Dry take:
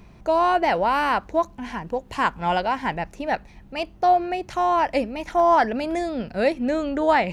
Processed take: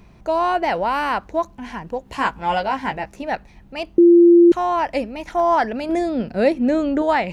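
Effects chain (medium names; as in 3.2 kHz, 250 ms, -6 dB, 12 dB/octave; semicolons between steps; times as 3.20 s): 2.04–3.23 s: doubling 15 ms -5 dB; 3.98–4.52 s: bleep 344 Hz -6.5 dBFS; 5.89–7.02 s: peaking EQ 290 Hz +6.5 dB 2.1 oct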